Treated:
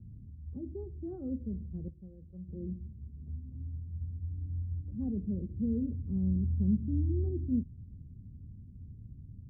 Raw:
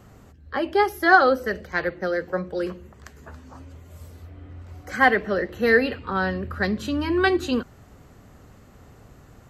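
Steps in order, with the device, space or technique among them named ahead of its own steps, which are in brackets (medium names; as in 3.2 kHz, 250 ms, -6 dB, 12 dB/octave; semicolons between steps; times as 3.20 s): the neighbour's flat through the wall (low-pass 220 Hz 24 dB/octave; peaking EQ 89 Hz +5.5 dB 0.7 oct); 1.88–2.49 s: peaking EQ 260 Hz -13.5 dB 2.8 oct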